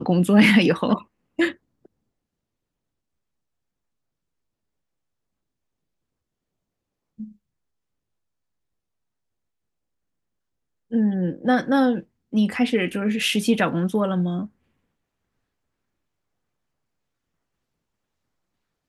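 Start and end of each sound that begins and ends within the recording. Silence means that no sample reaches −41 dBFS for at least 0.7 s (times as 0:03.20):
0:07.19–0:07.32
0:10.91–0:14.47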